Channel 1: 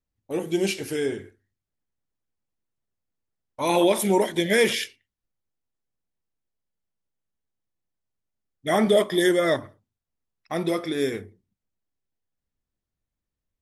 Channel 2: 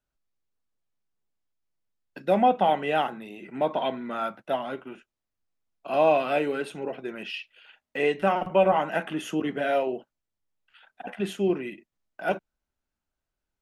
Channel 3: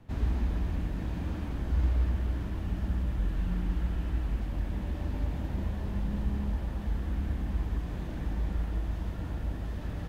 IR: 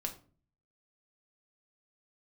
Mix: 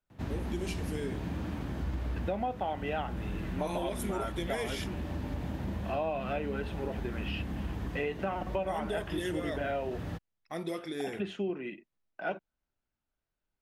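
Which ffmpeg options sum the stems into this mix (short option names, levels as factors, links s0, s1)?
-filter_complex "[0:a]volume=0.316[s0];[1:a]lowpass=4100,volume=0.75[s1];[2:a]highpass=91,adelay=100,volume=1.26[s2];[s0][s1][s2]amix=inputs=3:normalize=0,acompressor=threshold=0.0316:ratio=6"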